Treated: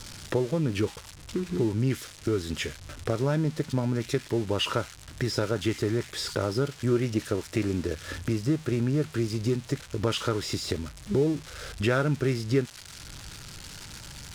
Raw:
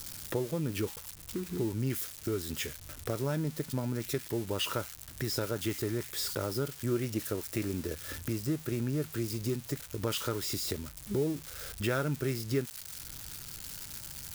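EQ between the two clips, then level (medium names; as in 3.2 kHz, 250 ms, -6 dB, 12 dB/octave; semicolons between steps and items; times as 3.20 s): distance through air 72 m; +6.5 dB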